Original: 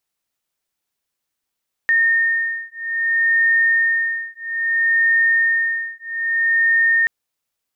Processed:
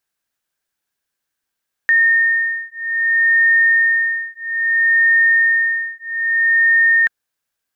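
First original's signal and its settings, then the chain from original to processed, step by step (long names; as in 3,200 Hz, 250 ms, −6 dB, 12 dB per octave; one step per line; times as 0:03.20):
two tones that beat 1,830 Hz, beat 0.61 Hz, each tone −18 dBFS 5.18 s
parametric band 1,600 Hz +10 dB 0.23 octaves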